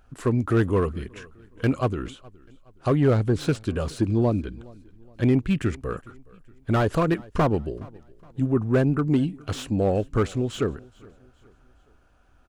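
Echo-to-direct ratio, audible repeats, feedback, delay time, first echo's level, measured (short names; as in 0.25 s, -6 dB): -23.0 dB, 2, 42%, 0.418 s, -24.0 dB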